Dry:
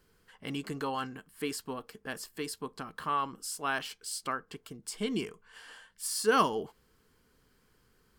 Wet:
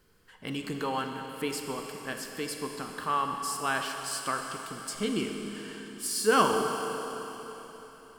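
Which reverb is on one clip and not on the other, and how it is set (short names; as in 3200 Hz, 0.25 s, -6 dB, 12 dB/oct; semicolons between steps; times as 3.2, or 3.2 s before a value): Schroeder reverb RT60 3.9 s, combs from 30 ms, DRR 3.5 dB; gain +2 dB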